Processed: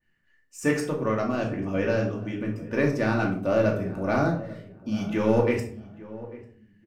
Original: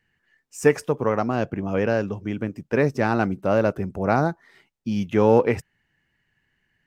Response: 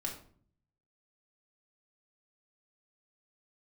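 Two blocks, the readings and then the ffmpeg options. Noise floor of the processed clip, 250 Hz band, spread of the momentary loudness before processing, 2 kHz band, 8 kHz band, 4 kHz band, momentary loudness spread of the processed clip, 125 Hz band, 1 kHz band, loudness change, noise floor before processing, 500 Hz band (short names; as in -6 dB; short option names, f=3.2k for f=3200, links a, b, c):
-66 dBFS, -1.5 dB, 11 LU, -2.0 dB, n/a, -0.5 dB, 16 LU, -1.5 dB, -5.5 dB, -3.0 dB, -73 dBFS, -4.0 dB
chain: -filter_complex "[0:a]bandreject=f=860:w=12,asplit=2[a][b];[b]asoftclip=type=tanh:threshold=-15dB,volume=-8.5dB[c];[a][c]amix=inputs=2:normalize=0,asplit=2[d][e];[e]adelay=845,lowpass=f=1.4k:p=1,volume=-17dB,asplit=2[f][g];[g]adelay=845,lowpass=f=1.4k:p=1,volume=0.24[h];[d][f][h]amix=inputs=3:normalize=0[i];[1:a]atrim=start_sample=2205[j];[i][j]afir=irnorm=-1:irlink=0,adynamicequalizer=threshold=0.0178:dfrequency=2000:dqfactor=0.7:tfrequency=2000:tqfactor=0.7:attack=5:release=100:ratio=0.375:range=2:mode=boostabove:tftype=highshelf,volume=-6.5dB"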